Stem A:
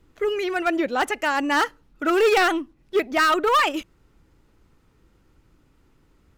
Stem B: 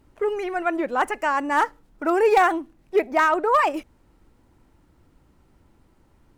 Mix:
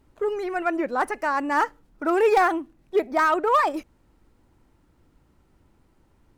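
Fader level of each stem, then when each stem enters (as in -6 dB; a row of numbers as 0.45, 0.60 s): -13.0, -3.0 dB; 0.00, 0.00 s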